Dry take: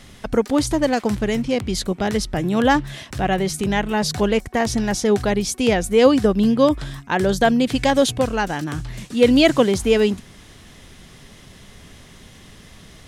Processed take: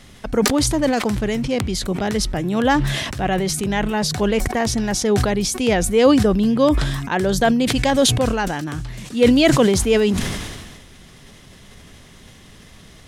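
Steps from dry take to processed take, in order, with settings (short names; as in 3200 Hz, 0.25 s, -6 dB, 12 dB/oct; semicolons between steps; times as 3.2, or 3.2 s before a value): sustainer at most 36 dB/s; gain -1 dB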